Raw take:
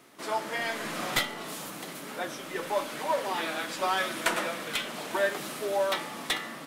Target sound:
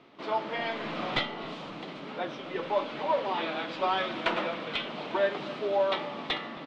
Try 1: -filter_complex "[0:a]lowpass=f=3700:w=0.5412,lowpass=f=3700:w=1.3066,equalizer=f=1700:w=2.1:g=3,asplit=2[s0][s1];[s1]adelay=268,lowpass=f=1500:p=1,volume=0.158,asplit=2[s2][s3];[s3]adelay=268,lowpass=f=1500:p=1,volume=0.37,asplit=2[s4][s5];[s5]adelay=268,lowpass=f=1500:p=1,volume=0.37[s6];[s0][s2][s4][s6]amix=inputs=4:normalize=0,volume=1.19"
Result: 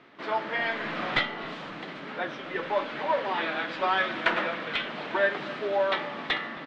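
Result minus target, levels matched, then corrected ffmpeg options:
2 kHz band +4.5 dB
-filter_complex "[0:a]lowpass=f=3700:w=0.5412,lowpass=f=3700:w=1.3066,equalizer=f=1700:w=2.1:g=-6.5,asplit=2[s0][s1];[s1]adelay=268,lowpass=f=1500:p=1,volume=0.158,asplit=2[s2][s3];[s3]adelay=268,lowpass=f=1500:p=1,volume=0.37,asplit=2[s4][s5];[s5]adelay=268,lowpass=f=1500:p=1,volume=0.37[s6];[s0][s2][s4][s6]amix=inputs=4:normalize=0,volume=1.19"

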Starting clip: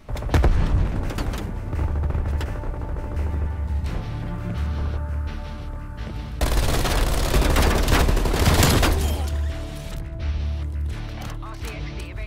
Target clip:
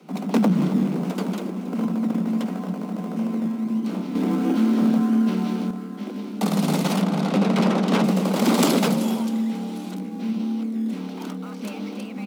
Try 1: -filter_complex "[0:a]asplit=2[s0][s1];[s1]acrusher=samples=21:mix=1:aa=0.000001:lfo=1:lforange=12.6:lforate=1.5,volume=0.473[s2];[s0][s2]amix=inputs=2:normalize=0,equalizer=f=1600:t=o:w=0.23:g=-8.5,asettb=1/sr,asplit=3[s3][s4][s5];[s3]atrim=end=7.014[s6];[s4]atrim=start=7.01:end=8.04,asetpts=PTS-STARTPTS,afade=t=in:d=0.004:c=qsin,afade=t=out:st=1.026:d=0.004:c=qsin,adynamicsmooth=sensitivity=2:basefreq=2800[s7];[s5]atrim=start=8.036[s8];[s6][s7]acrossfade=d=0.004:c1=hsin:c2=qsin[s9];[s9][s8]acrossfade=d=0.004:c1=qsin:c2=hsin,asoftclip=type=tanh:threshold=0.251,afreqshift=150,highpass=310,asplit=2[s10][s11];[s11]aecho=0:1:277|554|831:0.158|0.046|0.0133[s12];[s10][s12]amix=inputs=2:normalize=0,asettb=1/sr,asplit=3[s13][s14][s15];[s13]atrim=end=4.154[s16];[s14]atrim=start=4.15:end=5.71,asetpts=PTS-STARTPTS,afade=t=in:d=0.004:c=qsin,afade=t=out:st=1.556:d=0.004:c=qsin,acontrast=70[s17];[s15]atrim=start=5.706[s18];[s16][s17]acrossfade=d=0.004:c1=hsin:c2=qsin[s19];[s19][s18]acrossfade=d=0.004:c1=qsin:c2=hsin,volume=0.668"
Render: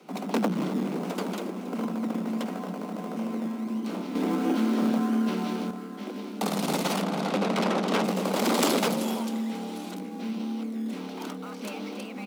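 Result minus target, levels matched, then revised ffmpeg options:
saturation: distortion +11 dB; 125 Hz band -4.0 dB
-filter_complex "[0:a]asplit=2[s0][s1];[s1]acrusher=samples=21:mix=1:aa=0.000001:lfo=1:lforange=12.6:lforate=1.5,volume=0.473[s2];[s0][s2]amix=inputs=2:normalize=0,equalizer=f=1600:t=o:w=0.23:g=-8.5,asettb=1/sr,asplit=3[s3][s4][s5];[s3]atrim=end=7.014[s6];[s4]atrim=start=7.01:end=8.04,asetpts=PTS-STARTPTS,afade=t=in:d=0.004:c=qsin,afade=t=out:st=1.026:d=0.004:c=qsin,adynamicsmooth=sensitivity=2:basefreq=2800[s7];[s5]atrim=start=8.036[s8];[s6][s7]acrossfade=d=0.004:c1=hsin:c2=qsin[s9];[s9][s8]acrossfade=d=0.004:c1=qsin:c2=hsin,asoftclip=type=tanh:threshold=0.631,afreqshift=150,highpass=140,asplit=2[s10][s11];[s11]aecho=0:1:277|554|831:0.158|0.046|0.0133[s12];[s10][s12]amix=inputs=2:normalize=0,asettb=1/sr,asplit=3[s13][s14][s15];[s13]atrim=end=4.154[s16];[s14]atrim=start=4.15:end=5.71,asetpts=PTS-STARTPTS,afade=t=in:d=0.004:c=qsin,afade=t=out:st=1.556:d=0.004:c=qsin,acontrast=70[s17];[s15]atrim=start=5.706[s18];[s16][s17]acrossfade=d=0.004:c1=hsin:c2=qsin[s19];[s19][s18]acrossfade=d=0.004:c1=qsin:c2=hsin,volume=0.668"

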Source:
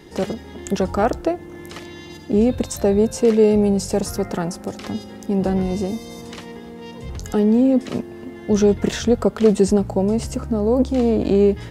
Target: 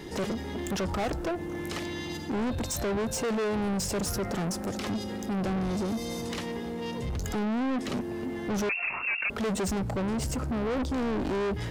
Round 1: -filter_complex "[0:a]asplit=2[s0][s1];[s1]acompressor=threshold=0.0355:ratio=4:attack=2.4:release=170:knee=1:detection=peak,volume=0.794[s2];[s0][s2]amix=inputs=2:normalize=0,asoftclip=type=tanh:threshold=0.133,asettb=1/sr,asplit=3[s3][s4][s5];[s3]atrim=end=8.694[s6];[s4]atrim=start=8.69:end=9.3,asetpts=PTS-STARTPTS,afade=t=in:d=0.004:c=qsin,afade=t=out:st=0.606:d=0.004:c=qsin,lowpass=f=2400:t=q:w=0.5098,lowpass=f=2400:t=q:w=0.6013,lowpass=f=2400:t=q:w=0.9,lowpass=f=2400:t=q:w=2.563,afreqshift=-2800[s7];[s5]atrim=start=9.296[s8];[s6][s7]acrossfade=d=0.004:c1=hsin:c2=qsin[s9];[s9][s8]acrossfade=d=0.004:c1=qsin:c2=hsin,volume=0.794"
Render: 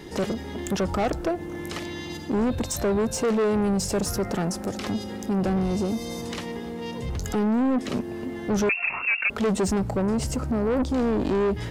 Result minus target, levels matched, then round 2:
saturation: distortion -5 dB
-filter_complex "[0:a]asplit=2[s0][s1];[s1]acompressor=threshold=0.0355:ratio=4:attack=2.4:release=170:knee=1:detection=peak,volume=0.794[s2];[s0][s2]amix=inputs=2:normalize=0,asoftclip=type=tanh:threshold=0.0562,asettb=1/sr,asplit=3[s3][s4][s5];[s3]atrim=end=8.694[s6];[s4]atrim=start=8.69:end=9.3,asetpts=PTS-STARTPTS,afade=t=in:d=0.004:c=qsin,afade=t=out:st=0.606:d=0.004:c=qsin,lowpass=f=2400:t=q:w=0.5098,lowpass=f=2400:t=q:w=0.6013,lowpass=f=2400:t=q:w=0.9,lowpass=f=2400:t=q:w=2.563,afreqshift=-2800[s7];[s5]atrim=start=9.296[s8];[s6][s7]acrossfade=d=0.004:c1=hsin:c2=qsin[s9];[s9][s8]acrossfade=d=0.004:c1=qsin:c2=hsin,volume=0.794"

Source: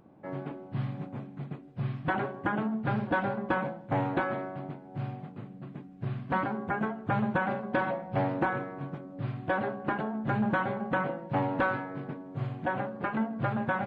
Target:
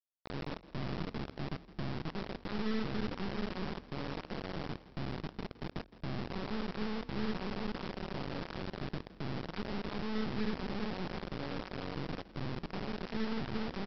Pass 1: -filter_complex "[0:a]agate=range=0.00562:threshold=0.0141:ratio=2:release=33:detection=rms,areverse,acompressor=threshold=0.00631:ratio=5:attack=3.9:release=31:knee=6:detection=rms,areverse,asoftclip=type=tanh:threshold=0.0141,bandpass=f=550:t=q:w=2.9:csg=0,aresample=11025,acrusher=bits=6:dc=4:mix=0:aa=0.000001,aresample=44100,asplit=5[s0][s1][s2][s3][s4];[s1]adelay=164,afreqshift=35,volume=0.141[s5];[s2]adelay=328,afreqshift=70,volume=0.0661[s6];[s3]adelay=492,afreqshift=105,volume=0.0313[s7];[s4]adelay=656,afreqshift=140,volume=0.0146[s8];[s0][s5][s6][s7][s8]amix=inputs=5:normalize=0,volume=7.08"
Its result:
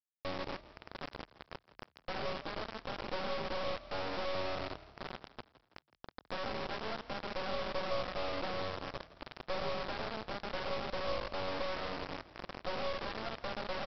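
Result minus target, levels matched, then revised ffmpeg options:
250 Hz band -9.5 dB
-filter_complex "[0:a]agate=range=0.00562:threshold=0.0141:ratio=2:release=33:detection=rms,areverse,acompressor=threshold=0.00631:ratio=5:attack=3.9:release=31:knee=6:detection=rms,areverse,asoftclip=type=tanh:threshold=0.0141,bandpass=f=190:t=q:w=2.9:csg=0,aresample=11025,acrusher=bits=6:dc=4:mix=0:aa=0.000001,aresample=44100,asplit=5[s0][s1][s2][s3][s4];[s1]adelay=164,afreqshift=35,volume=0.141[s5];[s2]adelay=328,afreqshift=70,volume=0.0661[s6];[s3]adelay=492,afreqshift=105,volume=0.0313[s7];[s4]adelay=656,afreqshift=140,volume=0.0146[s8];[s0][s5][s6][s7][s8]amix=inputs=5:normalize=0,volume=7.08"

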